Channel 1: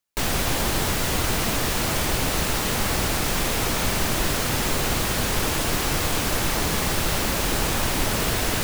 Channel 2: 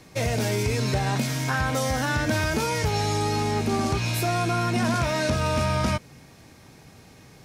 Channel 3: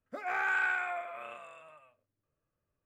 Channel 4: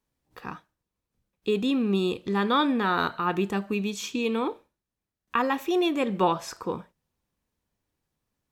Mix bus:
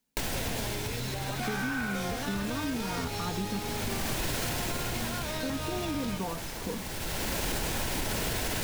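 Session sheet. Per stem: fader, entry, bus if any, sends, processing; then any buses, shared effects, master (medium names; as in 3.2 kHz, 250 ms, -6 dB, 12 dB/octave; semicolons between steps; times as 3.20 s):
+2.0 dB, 0.00 s, no send, band-stop 1.2 kHz, Q 6.9; peak limiter -16.5 dBFS, peak gain reduction 7 dB; auto duck -14 dB, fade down 1.00 s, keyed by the fourth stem
-7.0 dB, 0.20 s, no send, peaking EQ 3.5 kHz +7.5 dB 0.77 oct; compression, threshold -25 dBFS, peak gain reduction 6 dB
-1.0 dB, 1.15 s, no send, none
-13.0 dB, 0.00 s, muted 3.59–5.43 s, no send, peaking EQ 230 Hz +13 dB 2 oct; comb 4.3 ms; compression, threshold -16 dBFS, peak gain reduction 9.5 dB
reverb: none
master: compression, threshold -28 dBFS, peak gain reduction 8 dB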